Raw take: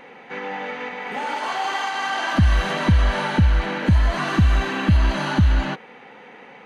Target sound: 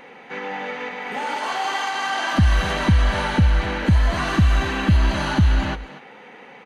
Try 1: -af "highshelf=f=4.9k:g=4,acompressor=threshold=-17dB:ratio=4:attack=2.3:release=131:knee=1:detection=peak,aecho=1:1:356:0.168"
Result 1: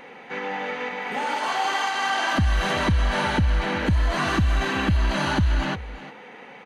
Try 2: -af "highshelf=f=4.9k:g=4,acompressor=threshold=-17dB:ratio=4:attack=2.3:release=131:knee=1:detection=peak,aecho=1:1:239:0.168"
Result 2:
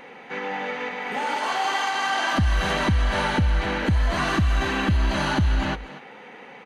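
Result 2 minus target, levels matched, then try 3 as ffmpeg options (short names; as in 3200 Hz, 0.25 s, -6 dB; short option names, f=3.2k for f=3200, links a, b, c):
compressor: peak gain reduction +6 dB
-af "highshelf=f=4.9k:g=4,aecho=1:1:239:0.168"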